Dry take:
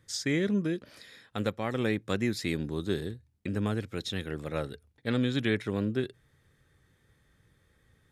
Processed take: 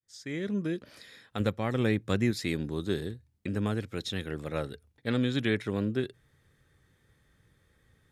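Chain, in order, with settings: opening faded in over 0.80 s; 1.4–2.31 low shelf 150 Hz +8 dB

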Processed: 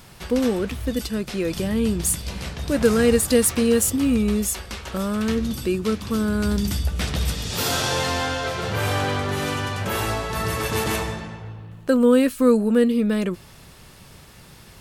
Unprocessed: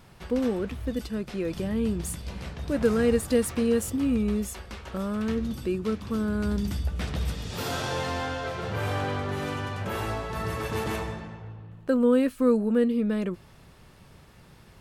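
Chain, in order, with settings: high shelf 3100 Hz +9.5 dB; gain +5 dB

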